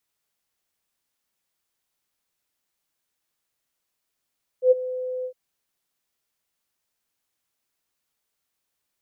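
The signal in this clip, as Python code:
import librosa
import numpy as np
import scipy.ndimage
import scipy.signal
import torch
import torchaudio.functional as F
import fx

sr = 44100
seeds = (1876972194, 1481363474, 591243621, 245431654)

y = fx.adsr_tone(sr, wave='sine', hz=508.0, attack_ms=91.0, decay_ms=23.0, sustain_db=-16.5, held_s=0.63, release_ms=80.0, level_db=-10.0)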